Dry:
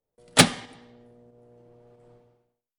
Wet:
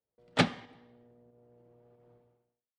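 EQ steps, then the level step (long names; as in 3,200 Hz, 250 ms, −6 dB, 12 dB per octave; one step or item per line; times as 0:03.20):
high-pass filter 42 Hz
high-frequency loss of the air 110 metres
high-shelf EQ 5,400 Hz −9 dB
−7.0 dB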